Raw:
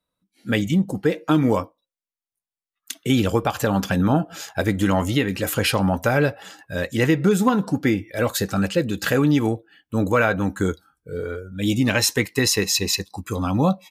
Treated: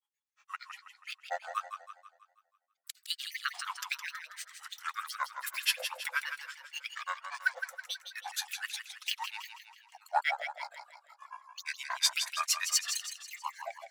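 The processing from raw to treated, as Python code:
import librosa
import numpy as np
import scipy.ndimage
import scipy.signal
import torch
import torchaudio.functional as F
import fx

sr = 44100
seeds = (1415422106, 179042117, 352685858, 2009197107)

y = fx.brickwall_highpass(x, sr, low_hz=930.0)
y = fx.granulator(y, sr, seeds[0], grain_ms=100.0, per_s=8.5, spray_ms=14.0, spread_st=12)
y = fx.echo_warbled(y, sr, ms=162, feedback_pct=48, rate_hz=2.8, cents=80, wet_db=-8)
y = F.gain(torch.from_numpy(y), -4.0).numpy()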